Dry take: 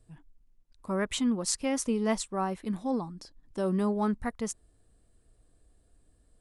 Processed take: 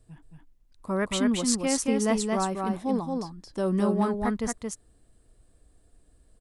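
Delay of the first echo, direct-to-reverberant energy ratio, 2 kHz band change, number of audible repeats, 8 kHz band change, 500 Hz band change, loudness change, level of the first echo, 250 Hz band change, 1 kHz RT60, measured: 224 ms, no reverb audible, +4.0 dB, 1, +4.0 dB, +4.0 dB, +3.5 dB, −3.5 dB, +4.0 dB, no reverb audible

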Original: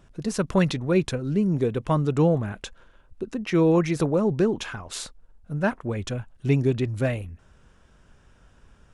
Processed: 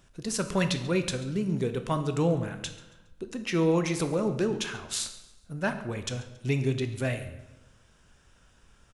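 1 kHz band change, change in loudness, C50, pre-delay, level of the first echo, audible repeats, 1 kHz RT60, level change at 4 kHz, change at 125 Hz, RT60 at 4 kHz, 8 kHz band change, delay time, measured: −3.5 dB, −5.0 dB, 10.0 dB, 12 ms, −19.5 dB, 2, 0.95 s, +2.0 dB, −5.5 dB, 0.80 s, +3.5 dB, 138 ms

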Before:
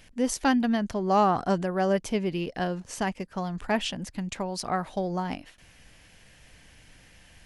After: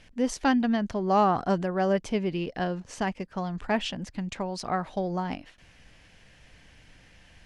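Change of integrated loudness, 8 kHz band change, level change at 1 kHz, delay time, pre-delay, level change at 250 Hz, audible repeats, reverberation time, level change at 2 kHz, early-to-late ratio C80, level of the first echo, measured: −0.5 dB, −5.5 dB, −0.5 dB, no echo audible, no reverb audible, 0.0 dB, no echo audible, no reverb audible, −0.5 dB, no reverb audible, no echo audible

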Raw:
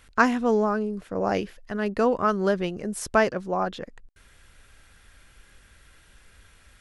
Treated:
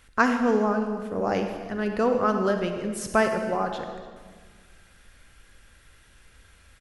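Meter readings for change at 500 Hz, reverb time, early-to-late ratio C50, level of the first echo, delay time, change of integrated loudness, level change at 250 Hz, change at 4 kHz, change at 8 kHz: 0.0 dB, 1.6 s, 6.0 dB, −20.0 dB, 288 ms, 0.0 dB, +0.5 dB, −0.5 dB, −0.5 dB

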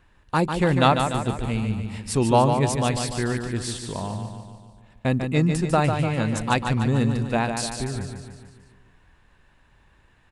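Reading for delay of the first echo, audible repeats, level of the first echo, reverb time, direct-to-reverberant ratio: 147 ms, 6, −6.5 dB, no reverb audible, no reverb audible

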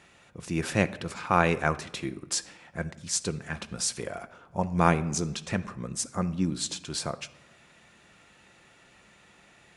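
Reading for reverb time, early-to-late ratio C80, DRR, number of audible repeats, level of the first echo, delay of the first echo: 1.0 s, 19.0 dB, 11.0 dB, no echo audible, no echo audible, no echo audible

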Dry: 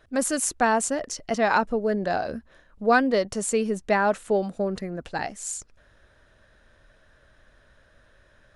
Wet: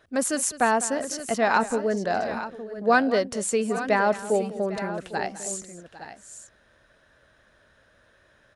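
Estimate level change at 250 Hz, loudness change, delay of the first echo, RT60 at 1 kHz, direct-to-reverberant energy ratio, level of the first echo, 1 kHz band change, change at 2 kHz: −0.5 dB, 0.0 dB, 202 ms, no reverb audible, no reverb audible, −16.0 dB, +0.5 dB, +0.5 dB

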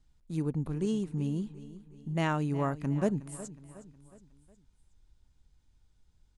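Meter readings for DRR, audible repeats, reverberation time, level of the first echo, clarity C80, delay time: no reverb audible, 3, no reverb audible, −16.0 dB, no reverb audible, 365 ms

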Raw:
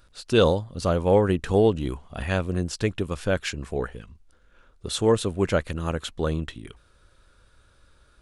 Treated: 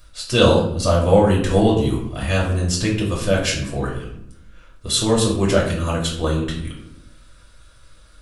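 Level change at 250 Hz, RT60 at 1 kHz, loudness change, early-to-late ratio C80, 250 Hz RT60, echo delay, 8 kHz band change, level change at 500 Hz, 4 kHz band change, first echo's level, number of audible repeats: +6.5 dB, 0.65 s, +5.5 dB, 9.0 dB, 1.2 s, no echo audible, +11.5 dB, +4.0 dB, +9.5 dB, no echo audible, no echo audible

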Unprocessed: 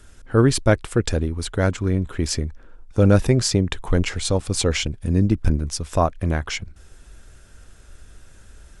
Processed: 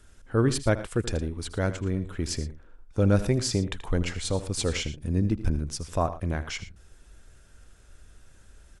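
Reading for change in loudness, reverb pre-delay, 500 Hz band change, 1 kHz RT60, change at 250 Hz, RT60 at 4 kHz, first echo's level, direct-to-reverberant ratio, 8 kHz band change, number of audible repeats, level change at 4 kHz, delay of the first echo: −7.0 dB, no reverb audible, −7.0 dB, no reverb audible, −6.5 dB, no reverb audible, −14.5 dB, no reverb audible, −7.0 dB, 2, −6.5 dB, 80 ms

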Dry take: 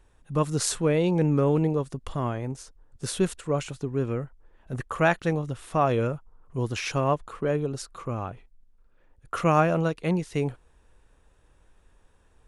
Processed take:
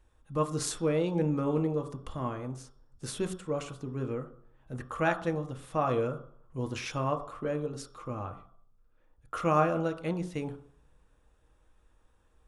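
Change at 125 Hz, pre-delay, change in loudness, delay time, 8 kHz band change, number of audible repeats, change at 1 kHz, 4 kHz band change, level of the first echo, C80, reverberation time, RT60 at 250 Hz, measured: −7.5 dB, 3 ms, −5.5 dB, no echo audible, −7.0 dB, no echo audible, −4.5 dB, −6.5 dB, no echo audible, 15.5 dB, 0.60 s, 0.60 s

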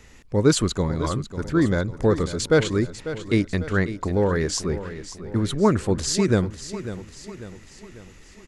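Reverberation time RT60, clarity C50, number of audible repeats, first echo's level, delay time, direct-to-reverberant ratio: no reverb audible, no reverb audible, 4, −12.5 dB, 546 ms, no reverb audible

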